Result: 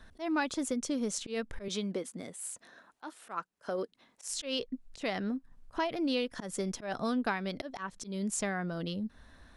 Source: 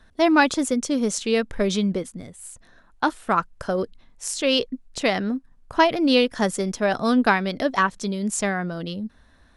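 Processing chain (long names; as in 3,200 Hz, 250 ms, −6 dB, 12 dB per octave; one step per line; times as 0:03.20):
0:01.68–0:04.28: high-pass filter 260 Hz 12 dB per octave
downward compressor 2.5 to 1, threshold −35 dBFS, peak gain reduction 15.5 dB
volume swells 123 ms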